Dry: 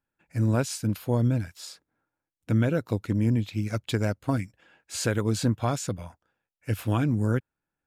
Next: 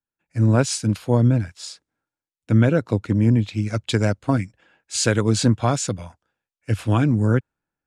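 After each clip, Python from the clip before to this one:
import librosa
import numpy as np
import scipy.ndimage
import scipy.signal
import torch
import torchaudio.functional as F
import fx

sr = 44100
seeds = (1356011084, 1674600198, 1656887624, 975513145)

y = scipy.signal.sosfilt(scipy.signal.butter(4, 9400.0, 'lowpass', fs=sr, output='sos'), x)
y = fx.band_widen(y, sr, depth_pct=40)
y = F.gain(torch.from_numpy(y), 6.5).numpy()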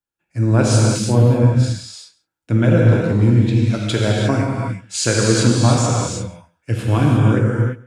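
y = x + 10.0 ** (-21.5 / 20.0) * np.pad(x, (int(136 * sr / 1000.0), 0))[:len(x)]
y = fx.rev_gated(y, sr, seeds[0], gate_ms=380, shape='flat', drr_db=-3.0)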